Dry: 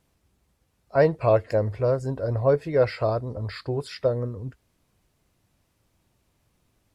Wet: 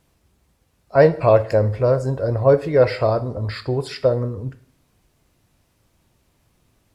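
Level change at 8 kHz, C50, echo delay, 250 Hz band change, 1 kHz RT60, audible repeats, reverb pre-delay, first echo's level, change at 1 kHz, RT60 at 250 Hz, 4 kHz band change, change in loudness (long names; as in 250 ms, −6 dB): can't be measured, 15.5 dB, no echo audible, +5.5 dB, 0.50 s, no echo audible, 6 ms, no echo audible, +6.0 dB, 0.50 s, +6.0 dB, +6.0 dB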